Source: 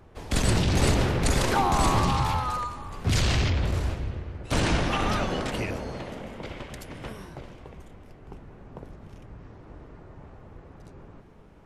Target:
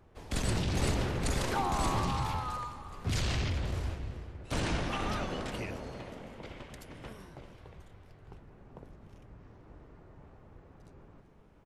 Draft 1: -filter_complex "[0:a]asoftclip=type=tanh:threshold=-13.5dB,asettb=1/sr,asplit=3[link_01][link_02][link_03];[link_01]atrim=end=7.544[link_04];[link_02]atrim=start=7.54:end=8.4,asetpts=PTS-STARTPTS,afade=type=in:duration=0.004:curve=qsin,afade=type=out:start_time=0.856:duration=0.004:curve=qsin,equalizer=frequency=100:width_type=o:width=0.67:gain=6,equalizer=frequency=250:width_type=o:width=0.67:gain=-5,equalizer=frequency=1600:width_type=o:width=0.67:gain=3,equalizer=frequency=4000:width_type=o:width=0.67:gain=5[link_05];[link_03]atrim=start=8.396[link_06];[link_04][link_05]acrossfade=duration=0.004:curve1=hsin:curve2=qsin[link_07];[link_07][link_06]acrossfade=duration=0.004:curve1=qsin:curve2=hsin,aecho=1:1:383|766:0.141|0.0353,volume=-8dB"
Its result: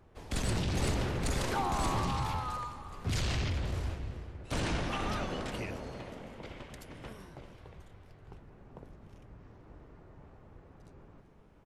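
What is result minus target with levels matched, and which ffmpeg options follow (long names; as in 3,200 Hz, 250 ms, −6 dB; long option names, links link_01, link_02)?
soft clipping: distortion +19 dB
-filter_complex "[0:a]asoftclip=type=tanh:threshold=-3dB,asettb=1/sr,asplit=3[link_01][link_02][link_03];[link_01]atrim=end=7.544[link_04];[link_02]atrim=start=7.54:end=8.4,asetpts=PTS-STARTPTS,afade=type=in:duration=0.004:curve=qsin,afade=type=out:start_time=0.856:duration=0.004:curve=qsin,equalizer=frequency=100:width_type=o:width=0.67:gain=6,equalizer=frequency=250:width_type=o:width=0.67:gain=-5,equalizer=frequency=1600:width_type=o:width=0.67:gain=3,equalizer=frequency=4000:width_type=o:width=0.67:gain=5[link_05];[link_03]atrim=start=8.396[link_06];[link_04][link_05]acrossfade=duration=0.004:curve1=hsin:curve2=qsin[link_07];[link_07][link_06]acrossfade=duration=0.004:curve1=qsin:curve2=hsin,aecho=1:1:383|766:0.141|0.0353,volume=-8dB"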